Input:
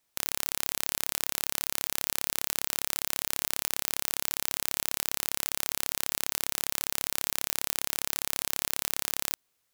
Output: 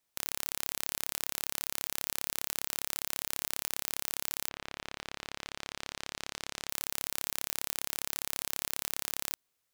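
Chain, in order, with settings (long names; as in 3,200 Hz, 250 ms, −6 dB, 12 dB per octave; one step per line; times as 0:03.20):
0:04.48–0:06.68: low-pass filter 2,800 Hz → 6,400 Hz 12 dB per octave
level −4.5 dB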